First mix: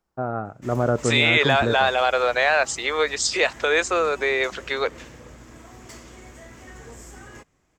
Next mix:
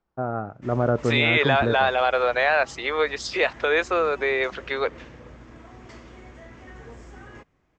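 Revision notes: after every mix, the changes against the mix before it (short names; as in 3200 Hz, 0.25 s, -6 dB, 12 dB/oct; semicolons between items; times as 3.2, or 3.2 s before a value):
master: add air absorption 180 m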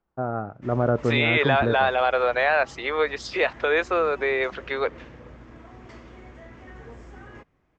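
master: add high shelf 5500 Hz -10 dB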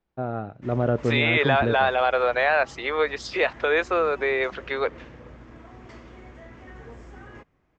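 first voice: remove synth low-pass 1300 Hz, resonance Q 1.7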